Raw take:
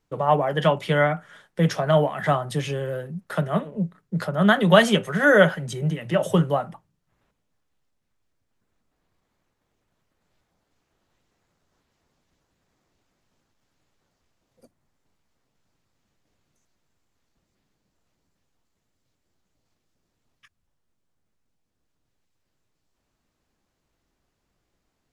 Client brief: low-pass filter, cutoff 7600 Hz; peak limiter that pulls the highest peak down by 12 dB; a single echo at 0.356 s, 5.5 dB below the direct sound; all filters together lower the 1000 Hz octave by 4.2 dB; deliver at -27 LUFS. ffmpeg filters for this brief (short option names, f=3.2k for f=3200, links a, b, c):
-af "lowpass=7.6k,equalizer=f=1k:t=o:g=-6,alimiter=limit=-16dB:level=0:latency=1,aecho=1:1:356:0.531,volume=-0.5dB"